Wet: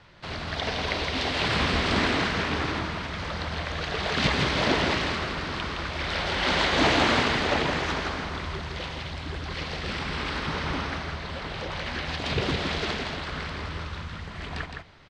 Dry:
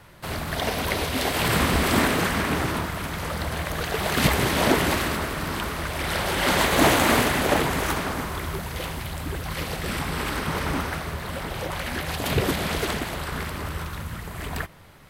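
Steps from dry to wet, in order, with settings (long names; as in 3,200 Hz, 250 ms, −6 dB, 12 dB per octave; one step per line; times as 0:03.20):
low-pass filter 4,900 Hz 24 dB per octave
high-shelf EQ 3,100 Hz +8.5 dB
on a send: single-tap delay 164 ms −5 dB
on the sum: level −5 dB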